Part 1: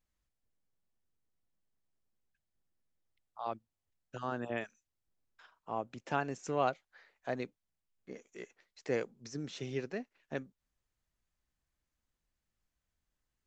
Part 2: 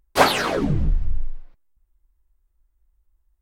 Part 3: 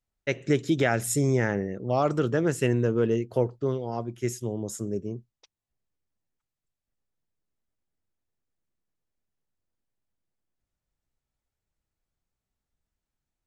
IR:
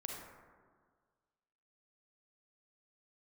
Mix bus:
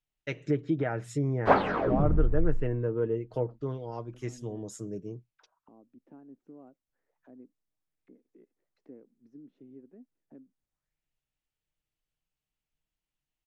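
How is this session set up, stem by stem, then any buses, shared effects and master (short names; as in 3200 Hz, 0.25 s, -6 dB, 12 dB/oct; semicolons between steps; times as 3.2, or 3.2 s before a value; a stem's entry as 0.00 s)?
+1.5 dB, 0.00 s, no send, treble ducked by the level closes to 1800 Hz, closed at -33.5 dBFS; compressor 1.5:1, threshold -56 dBFS, peak gain reduction 11 dB; auto-wah 270–3200 Hz, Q 3.4, down, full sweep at -54.5 dBFS
-4.5 dB, 1.30 s, no send, dry
-6.5 dB, 0.00 s, no send, comb 6.5 ms, depth 46%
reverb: off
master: treble ducked by the level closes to 1400 Hz, closed at -25.5 dBFS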